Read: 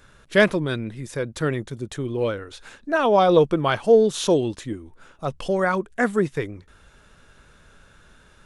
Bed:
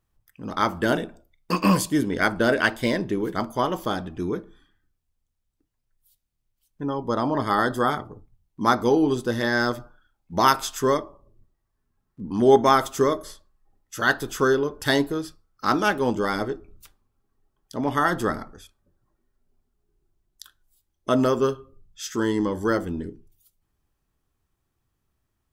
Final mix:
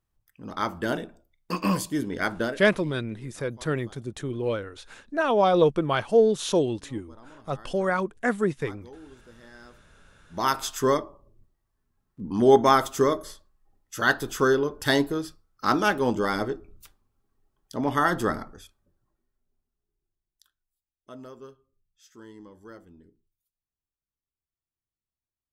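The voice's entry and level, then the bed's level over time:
2.25 s, −3.5 dB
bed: 0:02.44 −5.5 dB
0:02.68 −27 dB
0:09.73 −27 dB
0:10.67 −1 dB
0:18.67 −1 dB
0:21.03 −23 dB

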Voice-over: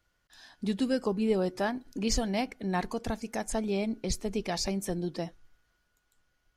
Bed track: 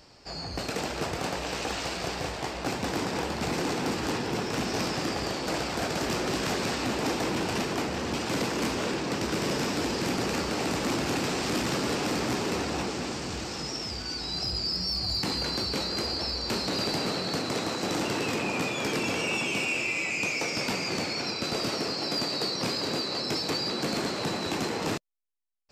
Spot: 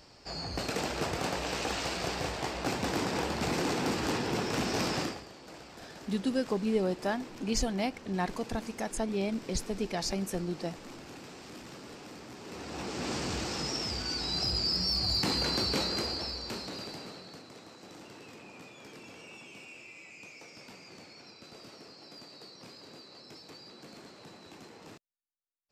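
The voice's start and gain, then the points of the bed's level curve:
5.45 s, −1.5 dB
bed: 0:05.02 −1.5 dB
0:05.26 −18.5 dB
0:12.35 −18.5 dB
0:13.14 0 dB
0:15.80 0 dB
0:17.52 −20.5 dB

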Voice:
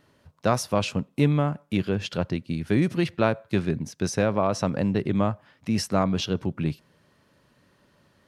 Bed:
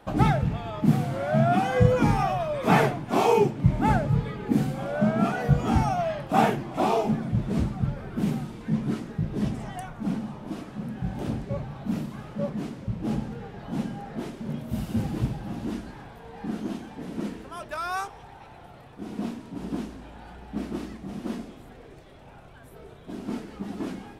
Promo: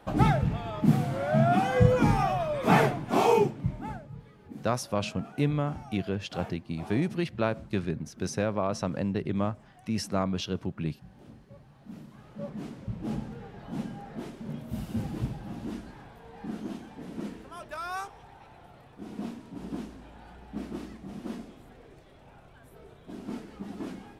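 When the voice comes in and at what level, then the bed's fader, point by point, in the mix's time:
4.20 s, −5.5 dB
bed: 0:03.36 −1.5 dB
0:04.07 −20.5 dB
0:11.60 −20.5 dB
0:12.70 −5 dB

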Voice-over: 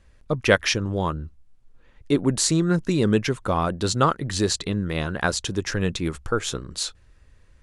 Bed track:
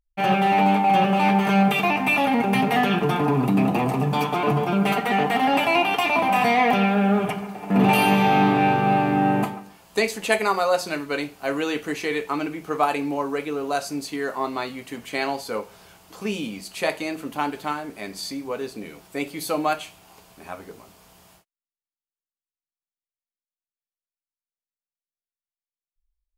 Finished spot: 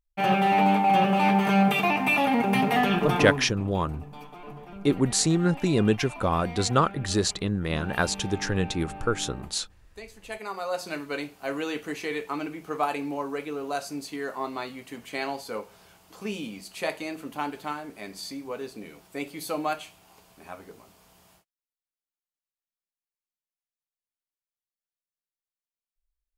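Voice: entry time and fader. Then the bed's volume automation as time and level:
2.75 s, −2.0 dB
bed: 0:03.28 −2.5 dB
0:03.51 −21.5 dB
0:10.06 −21.5 dB
0:10.93 −5.5 dB

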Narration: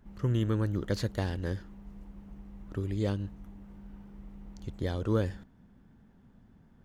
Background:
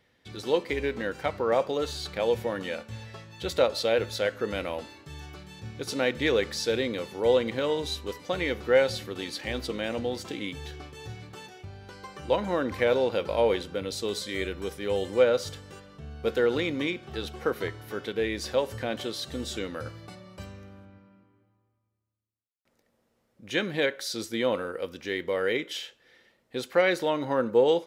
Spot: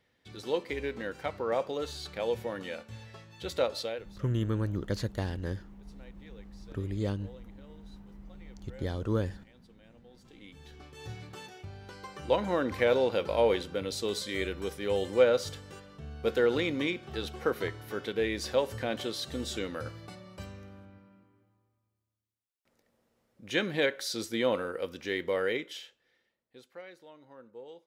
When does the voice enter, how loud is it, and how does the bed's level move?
4.00 s, −1.5 dB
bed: 0:03.80 −5.5 dB
0:04.25 −29.5 dB
0:09.96 −29.5 dB
0:11.09 −1.5 dB
0:25.37 −1.5 dB
0:26.93 −26 dB

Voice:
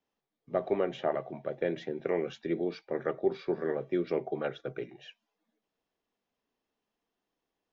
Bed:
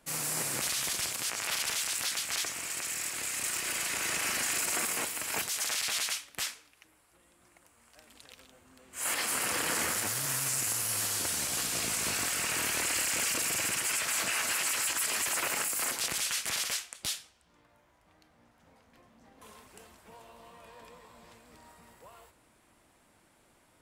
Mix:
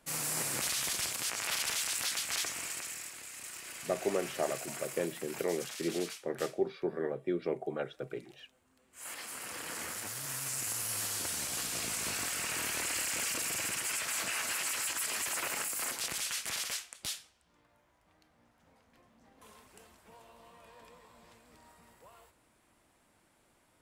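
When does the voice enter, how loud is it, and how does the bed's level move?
3.35 s, −3.0 dB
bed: 0:02.63 −1.5 dB
0:03.23 −12 dB
0:09.36 −12 dB
0:10.81 −4 dB

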